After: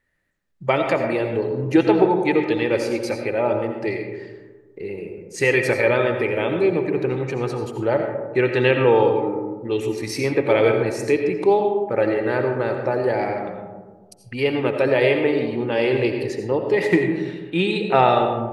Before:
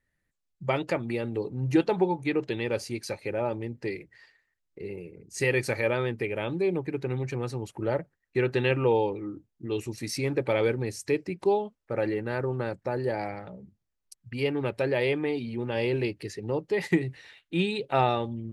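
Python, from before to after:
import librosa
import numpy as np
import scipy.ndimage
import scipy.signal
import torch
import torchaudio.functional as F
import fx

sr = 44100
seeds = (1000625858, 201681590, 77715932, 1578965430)

y = fx.bass_treble(x, sr, bass_db=-6, treble_db=-6)
y = fx.rev_freeverb(y, sr, rt60_s=1.4, hf_ratio=0.3, predelay_ms=45, drr_db=4.0)
y = F.gain(torch.from_numpy(y), 8.0).numpy()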